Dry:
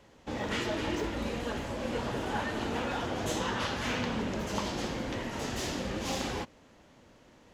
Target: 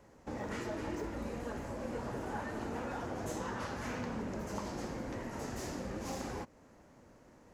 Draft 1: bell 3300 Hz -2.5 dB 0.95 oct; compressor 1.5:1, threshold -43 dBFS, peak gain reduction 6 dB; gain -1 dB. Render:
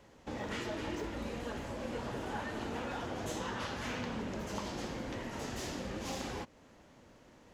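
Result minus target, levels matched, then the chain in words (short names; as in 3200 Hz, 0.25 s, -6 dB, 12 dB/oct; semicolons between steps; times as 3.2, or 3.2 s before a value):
4000 Hz band +6.0 dB
bell 3300 Hz -12.5 dB 0.95 oct; compressor 1.5:1, threshold -43 dBFS, peak gain reduction 5.5 dB; gain -1 dB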